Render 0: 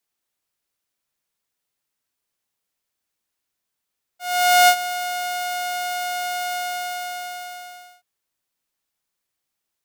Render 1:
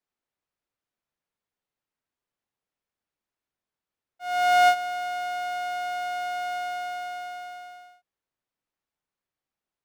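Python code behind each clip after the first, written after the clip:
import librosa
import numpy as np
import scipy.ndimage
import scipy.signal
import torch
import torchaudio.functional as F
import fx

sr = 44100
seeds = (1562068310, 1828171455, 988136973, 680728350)

y = fx.lowpass(x, sr, hz=1500.0, slope=6)
y = F.gain(torch.from_numpy(y), -2.0).numpy()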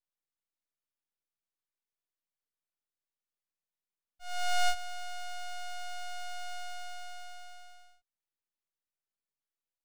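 y = np.abs(x)
y = F.gain(torch.from_numpy(y), -6.5).numpy()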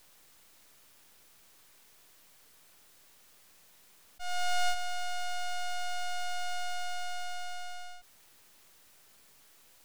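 y = fx.env_flatten(x, sr, amount_pct=50)
y = F.gain(torch.from_numpy(y), -2.0).numpy()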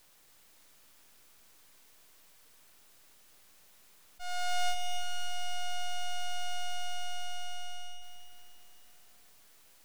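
y = fx.echo_feedback(x, sr, ms=281, feedback_pct=52, wet_db=-7.5)
y = F.gain(torch.from_numpy(y), -2.0).numpy()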